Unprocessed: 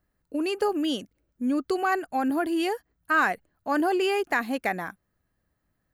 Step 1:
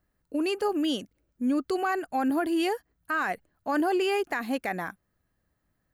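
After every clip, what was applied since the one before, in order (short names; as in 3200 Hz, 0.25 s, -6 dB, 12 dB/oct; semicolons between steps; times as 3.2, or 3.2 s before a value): limiter -19 dBFS, peak gain reduction 8 dB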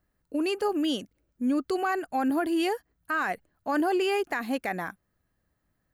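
nothing audible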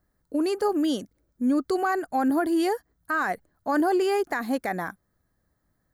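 bell 2700 Hz -11.5 dB 0.5 oct; gain +3 dB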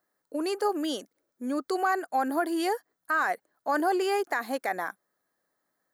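HPF 430 Hz 12 dB/oct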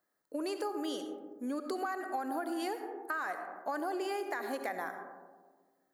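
reverb RT60 1.5 s, pre-delay 30 ms, DRR 8.5 dB; compressor, threshold -29 dBFS, peak gain reduction 8.5 dB; gain -3.5 dB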